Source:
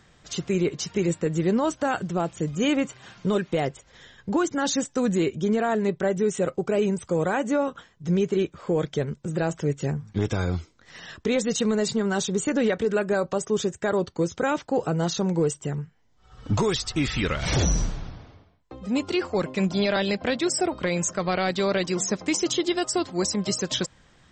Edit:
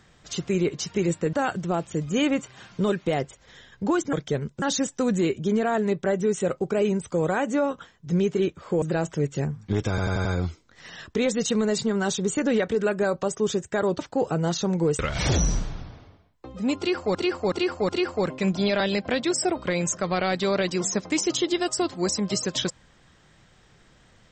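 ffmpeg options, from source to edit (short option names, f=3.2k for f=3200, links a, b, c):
-filter_complex "[0:a]asplit=14[a][b][c][d][e][f][g][h][i][j][k][l][m][n];[a]atrim=end=1.332[o];[b]atrim=start=1.788:end=4.592[p];[c]atrim=start=8.788:end=9.282[q];[d]atrim=start=4.588:end=8.792[r];[e]atrim=start=9.278:end=10.442[s];[f]atrim=start=10.348:end=10.442[t];[g]atrim=start=10.348:end=10.442[u];[h]atrim=start=10.348:end=10.442[v];[i]atrim=start=10.348:end=14.092[w];[j]atrim=start=14.548:end=15.552[x];[k]atrim=start=17.258:end=19.422[y];[l]atrim=start=19.048:end=19.422[z];[m]atrim=start=19.048:end=19.422[aa];[n]atrim=start=19.048[ab];[o][p]acrossfade=d=0.004:c1=hsin:c2=hsin[ac];[ac][q]acrossfade=d=0.004:c1=hsin:c2=hsin[ad];[ad][r]acrossfade=d=0.004:c1=hsin:c2=hsin[ae];[ae][s]acrossfade=d=0.004:c1=hsin:c2=hsin[af];[af][t]acrossfade=d=0.004:c1=hsin:c2=hsin[ag];[ag][u]acrossfade=d=0.004:c1=hsin:c2=hsin[ah];[ah][v]acrossfade=d=0.004:c1=hsin:c2=hsin[ai];[ai][w]acrossfade=d=0.004:c1=hsin:c2=hsin[aj];[aj][x]acrossfade=d=0.004:c1=hsin:c2=hsin[ak];[ak][y]acrossfade=d=0.004:c1=hsin:c2=hsin[al];[al][z]acrossfade=d=0.004:c1=hsin:c2=hsin[am];[am][aa]acrossfade=d=0.004:c1=hsin:c2=hsin[an];[an][ab]acrossfade=d=0.004:c1=hsin:c2=hsin"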